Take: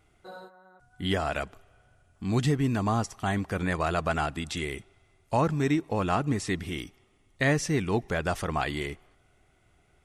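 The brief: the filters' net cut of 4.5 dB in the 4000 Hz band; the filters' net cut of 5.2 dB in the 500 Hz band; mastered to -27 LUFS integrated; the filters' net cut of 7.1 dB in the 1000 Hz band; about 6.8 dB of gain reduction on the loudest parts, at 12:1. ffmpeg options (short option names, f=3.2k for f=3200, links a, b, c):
-af "equalizer=f=500:t=o:g=-4.5,equalizer=f=1k:t=o:g=-8,equalizer=f=4k:t=o:g=-5.5,acompressor=threshold=-28dB:ratio=12,volume=8dB"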